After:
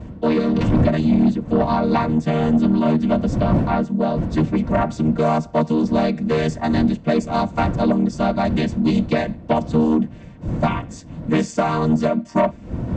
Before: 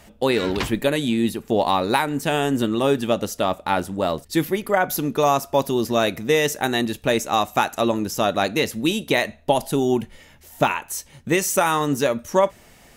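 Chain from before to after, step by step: vocoder on a held chord major triad, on D#3; wind noise 200 Hz -30 dBFS; Chebyshev shaper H 5 -14 dB, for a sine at -5.5 dBFS; comb of notches 410 Hz

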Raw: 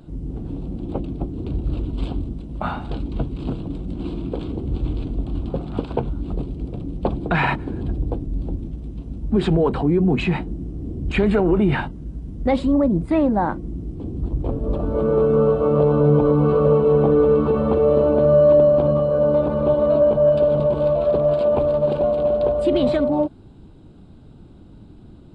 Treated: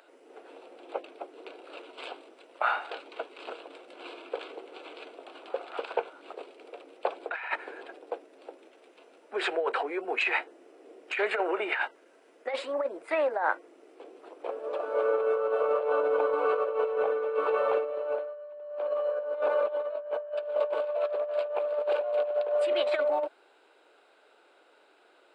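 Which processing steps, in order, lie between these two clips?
steep high-pass 460 Hz 36 dB/octave; high-order bell 1.9 kHz +8 dB 1.2 oct; compressor with a negative ratio -22 dBFS, ratio -0.5; trim -5.5 dB

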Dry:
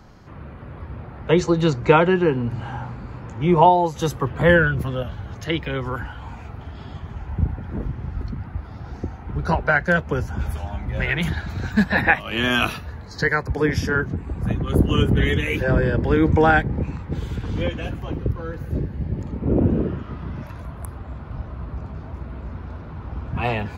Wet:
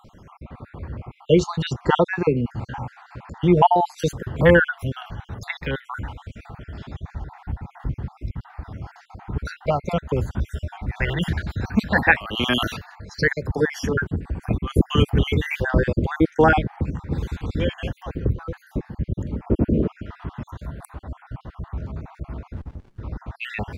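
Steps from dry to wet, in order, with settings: random holes in the spectrogram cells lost 48%; 22.53–23.01 s: sliding maximum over 65 samples; trim +1.5 dB

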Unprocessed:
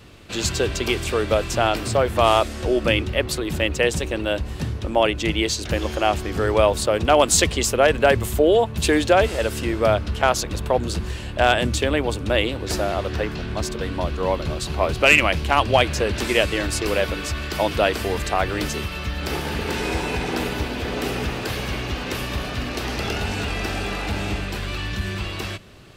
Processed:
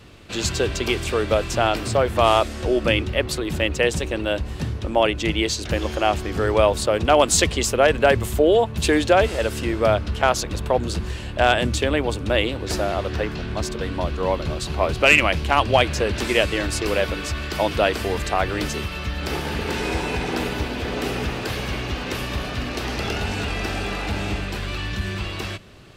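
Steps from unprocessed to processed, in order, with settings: treble shelf 11 kHz -5 dB

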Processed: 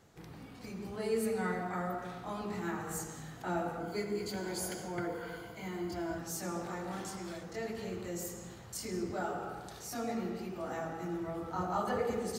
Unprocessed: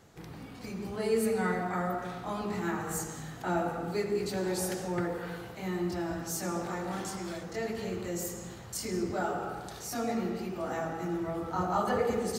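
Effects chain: 3.80–6.18 s: rippled EQ curve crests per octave 1.8, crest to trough 10 dB; trim -4.5 dB

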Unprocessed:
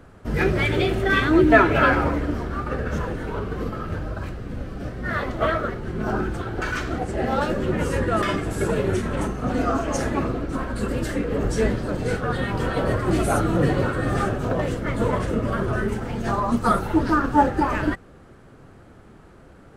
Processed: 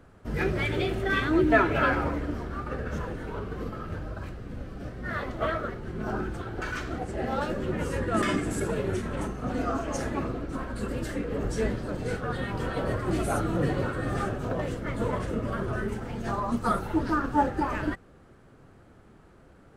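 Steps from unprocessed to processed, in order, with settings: 8.14–8.60 s: graphic EQ 250/2000/8000 Hz +8/+4/+9 dB; trim -6.5 dB

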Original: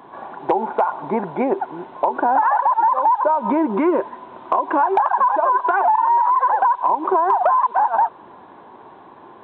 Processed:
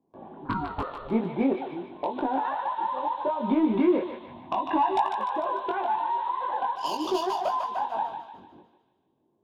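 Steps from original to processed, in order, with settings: 6.76–7.21 s: median filter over 15 samples; level-controlled noise filter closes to 660 Hz, open at -14.5 dBFS; gate with hold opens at -33 dBFS; FFT filter 250 Hz 0 dB, 1.4 kHz -17 dB, 3.3 kHz +6 dB; 0.44–1.07 s: ring modulator 690 Hz -> 250 Hz; 4.26–5.08 s: comb 1.1 ms, depth 98%; saturation -14.5 dBFS, distortion -22 dB; chorus 0.4 Hz, delay 18.5 ms, depth 4 ms; thinning echo 149 ms, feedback 56%, high-pass 960 Hz, level -5 dB; endings held to a fixed fall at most 200 dB/s; trim +3 dB

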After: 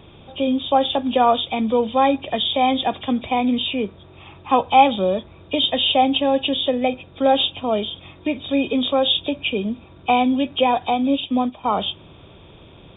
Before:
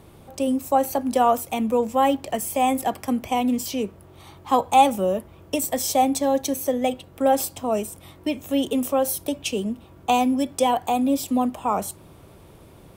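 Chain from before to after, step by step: knee-point frequency compression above 2.3 kHz 4:1; 10.94–11.64 s: upward expansion 1.5:1, over -34 dBFS; trim +2.5 dB

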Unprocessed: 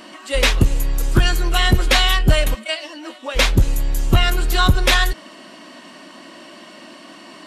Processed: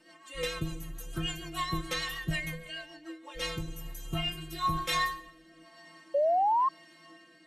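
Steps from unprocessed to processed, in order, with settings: peaking EQ 5 kHz -5.5 dB 0.2 oct; inharmonic resonator 160 Hz, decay 0.47 s, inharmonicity 0.008; plate-style reverb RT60 0.98 s, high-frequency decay 0.8×, DRR 9 dB; rotary cabinet horn 6.7 Hz, later 1 Hz, at 2.98 s; painted sound rise, 6.14–6.69 s, 550–1100 Hz -25 dBFS

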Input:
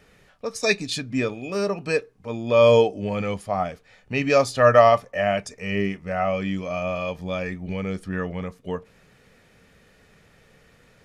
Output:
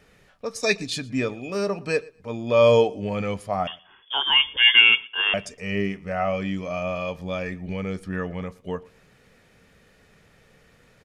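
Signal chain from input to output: 3.67–5.34 s: frequency inversion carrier 3.4 kHz; feedback delay 117 ms, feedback 18%, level -24 dB; trim -1 dB

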